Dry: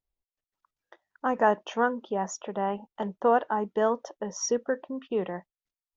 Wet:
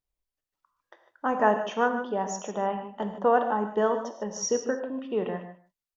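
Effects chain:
single-tap delay 151 ms −15.5 dB
on a send at −6 dB: convolution reverb, pre-delay 3 ms

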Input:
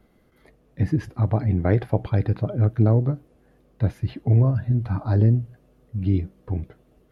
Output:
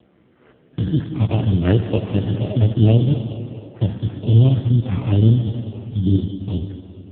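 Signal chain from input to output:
spectrum averaged block by block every 50 ms
in parallel at −2.5 dB: downward compressor 20 to 1, threshold −28 dBFS, peak gain reduction 16.5 dB
0:00.98–0:01.87: on the sum: high-shelf EQ 2,000 Hz +3 dB
echo through a band-pass that steps 218 ms, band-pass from 270 Hz, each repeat 0.7 octaves, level −12 dB
decimation without filtering 13×
0:05.38–0:06.21: double-tracking delay 28 ms −6 dB
convolution reverb RT60 2.3 s, pre-delay 64 ms, DRR 8 dB
level +4.5 dB
AMR narrowband 5.15 kbit/s 8,000 Hz

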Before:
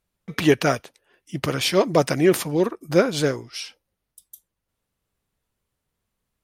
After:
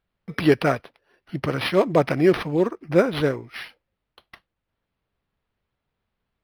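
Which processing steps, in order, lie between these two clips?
linearly interpolated sample-rate reduction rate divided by 6×

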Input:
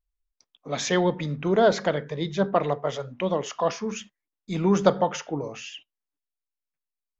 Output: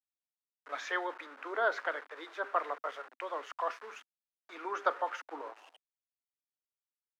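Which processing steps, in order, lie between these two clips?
centre clipping without the shift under −35.5 dBFS
band-pass filter sweep 1,400 Hz → 490 Hz, 0:05.15–0:06.16
Butterworth high-pass 260 Hz 72 dB per octave

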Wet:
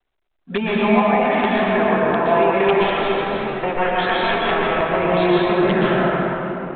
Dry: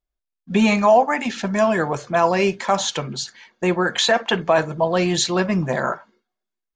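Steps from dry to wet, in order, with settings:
0:02.73–0:04.73: lower of the sound and its delayed copy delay 9.8 ms
low-pass filter 2,400 Hz 12 dB per octave
low-shelf EQ 490 Hz −11.5 dB
downward compressor 8 to 1, threshold −29 dBFS, peak gain reduction 15 dB
thirty-one-band graphic EQ 100 Hz −8 dB, 250 Hz +4 dB, 400 Hz +9 dB, 800 Hz +4 dB
wrap-around overflow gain 18 dB
convolution reverb RT60 3.6 s, pre-delay 116 ms, DRR −7 dB
level +6 dB
mu-law 64 kbit/s 8,000 Hz

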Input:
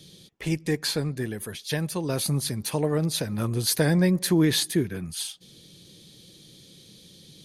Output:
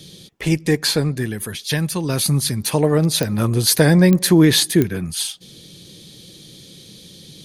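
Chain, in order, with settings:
0:01.15–0:02.67: dynamic equaliser 560 Hz, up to −6 dB, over −42 dBFS, Q 0.89
digital clicks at 0:03.23/0:04.13/0:04.82, −14 dBFS
level +8.5 dB

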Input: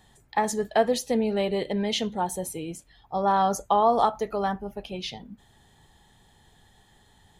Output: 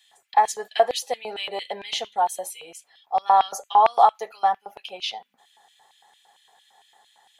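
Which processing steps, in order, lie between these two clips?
notch comb filter 310 Hz
auto-filter high-pass square 4.4 Hz 740–2,700 Hz
level +1.5 dB

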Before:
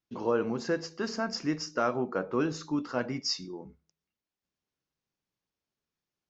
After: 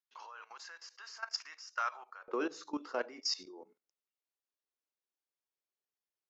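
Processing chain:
high-pass filter 1,000 Hz 24 dB per octave, from 0:02.28 350 Hz
output level in coarse steps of 17 dB
level +1 dB

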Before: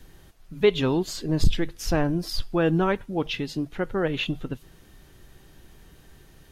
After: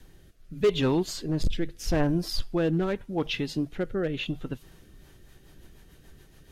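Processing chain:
hard clipping −16 dBFS, distortion −12 dB
rotating-speaker cabinet horn 0.8 Hz, later 7 Hz, at 0:04.63

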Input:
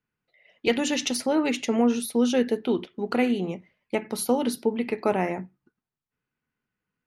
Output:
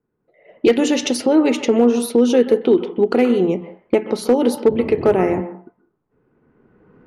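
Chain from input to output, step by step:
camcorder AGC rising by 15 dB per second
low-pass that shuts in the quiet parts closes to 1,000 Hz, open at −21.5 dBFS
parametric band 390 Hz +11 dB 1.1 octaves
in parallel at +1.5 dB: downward compressor 6 to 1, threshold −28 dBFS, peak gain reduction 17 dB
on the sum: hard clipping −5.5 dBFS, distortion −28 dB
0:04.67–0:05.40: noise in a band 68–470 Hz −29 dBFS
on a send at −6 dB: Chebyshev low-pass with heavy ripple 4,400 Hz, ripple 9 dB + convolution reverb RT60 0.45 s, pre-delay 127 ms

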